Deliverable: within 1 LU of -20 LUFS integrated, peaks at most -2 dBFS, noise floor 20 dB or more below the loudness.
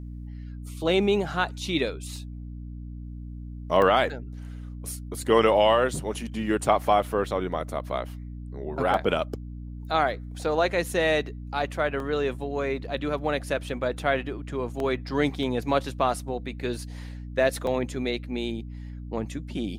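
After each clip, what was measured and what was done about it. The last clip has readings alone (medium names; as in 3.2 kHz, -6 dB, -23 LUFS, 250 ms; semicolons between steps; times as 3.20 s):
dropouts 7; longest dropout 1.6 ms; hum 60 Hz; highest harmonic 300 Hz; hum level -35 dBFS; loudness -26.5 LUFS; peak level -7.0 dBFS; loudness target -20.0 LUFS
-> interpolate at 2.16/3.82/8.94/12.00/14.80/15.43/17.67 s, 1.6 ms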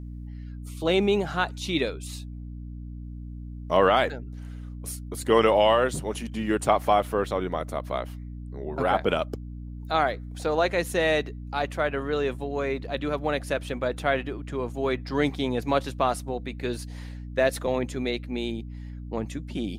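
dropouts 0; hum 60 Hz; highest harmonic 300 Hz; hum level -35 dBFS
-> hum notches 60/120/180/240/300 Hz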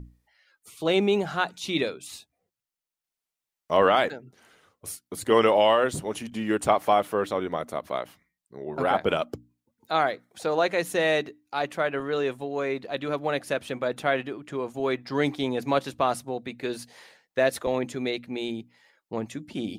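hum not found; loudness -26.5 LUFS; peak level -6.5 dBFS; loudness target -20.0 LUFS
-> trim +6.5 dB; peak limiter -2 dBFS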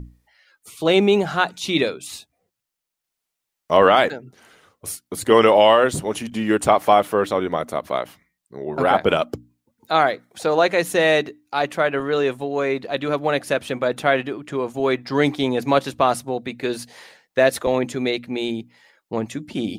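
loudness -20.0 LUFS; peak level -2.0 dBFS; noise floor -82 dBFS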